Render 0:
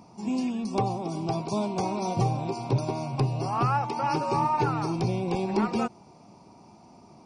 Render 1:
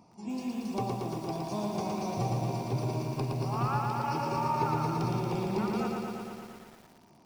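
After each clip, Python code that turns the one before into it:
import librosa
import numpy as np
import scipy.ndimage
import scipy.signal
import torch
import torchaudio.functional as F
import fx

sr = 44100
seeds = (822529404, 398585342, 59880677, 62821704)

y = fx.echo_crushed(x, sr, ms=115, feedback_pct=80, bits=8, wet_db=-3)
y = y * 10.0 ** (-7.5 / 20.0)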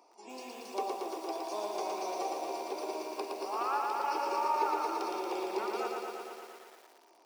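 y = scipy.signal.sosfilt(scipy.signal.butter(6, 350.0, 'highpass', fs=sr, output='sos'), x)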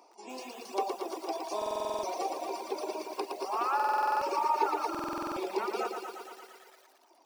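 y = fx.echo_thinned(x, sr, ms=212, feedback_pct=50, hz=420.0, wet_db=-11.5)
y = fx.dereverb_blind(y, sr, rt60_s=1.4)
y = fx.buffer_glitch(y, sr, at_s=(1.57, 3.75, 4.9), block=2048, repeats=9)
y = y * 10.0 ** (4.0 / 20.0)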